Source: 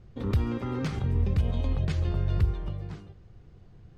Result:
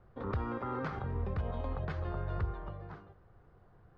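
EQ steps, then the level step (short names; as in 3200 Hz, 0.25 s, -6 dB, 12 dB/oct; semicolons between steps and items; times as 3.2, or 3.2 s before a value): air absorption 57 m; three-band isolator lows -12 dB, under 480 Hz, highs -18 dB, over 5100 Hz; resonant high shelf 1900 Hz -9.5 dB, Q 1.5; +1.5 dB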